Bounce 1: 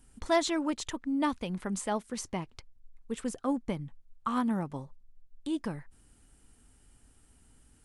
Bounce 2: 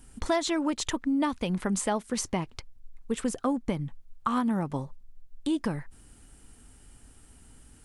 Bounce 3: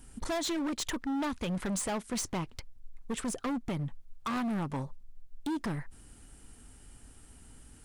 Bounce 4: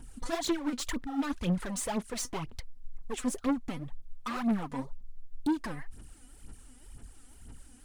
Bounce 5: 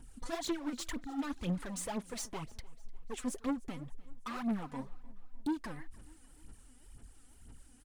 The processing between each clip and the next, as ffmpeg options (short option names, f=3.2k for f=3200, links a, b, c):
-af "acompressor=threshold=-31dB:ratio=6,volume=7.5dB"
-af "volume=30dB,asoftclip=hard,volume=-30dB"
-af "aphaser=in_gain=1:out_gain=1:delay=4.1:decay=0.69:speed=2:type=sinusoidal,volume=-3.5dB"
-af "aecho=1:1:300|600|900:0.075|0.0367|0.018,volume=-5.5dB"